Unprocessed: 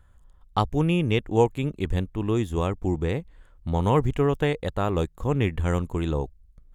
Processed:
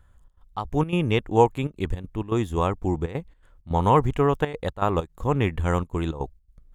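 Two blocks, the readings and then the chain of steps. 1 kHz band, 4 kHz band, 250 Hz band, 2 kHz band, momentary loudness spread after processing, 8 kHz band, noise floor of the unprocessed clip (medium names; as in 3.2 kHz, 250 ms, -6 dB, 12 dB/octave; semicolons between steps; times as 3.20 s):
+4.5 dB, -1.0 dB, -0.5 dB, +0.5 dB, 12 LU, no reading, -56 dBFS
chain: dynamic bell 990 Hz, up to +7 dB, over -38 dBFS, Q 1.1; trance gate "xxx.xx.xx.xxxxx" 162 bpm -12 dB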